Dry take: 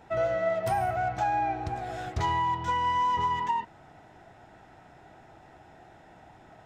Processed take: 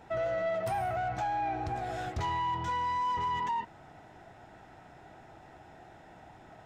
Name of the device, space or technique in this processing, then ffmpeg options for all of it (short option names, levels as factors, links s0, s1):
soft clipper into limiter: -af "asoftclip=type=tanh:threshold=0.075,alimiter=level_in=1.41:limit=0.0631:level=0:latency=1:release=18,volume=0.708"